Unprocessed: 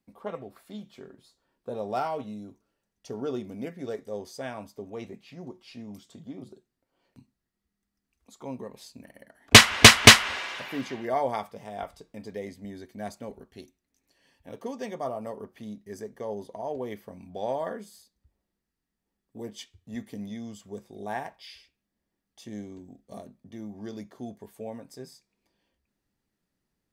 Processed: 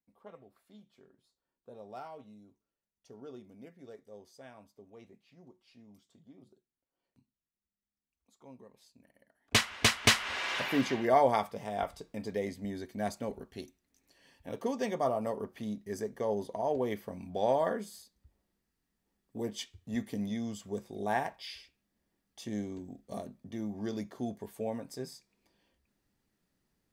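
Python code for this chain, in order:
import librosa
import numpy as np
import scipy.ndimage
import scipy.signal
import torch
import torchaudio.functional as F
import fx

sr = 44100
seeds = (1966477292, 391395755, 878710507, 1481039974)

y = fx.rider(x, sr, range_db=10, speed_s=0.5)
y = y * librosa.db_to_amplitude(-6.0)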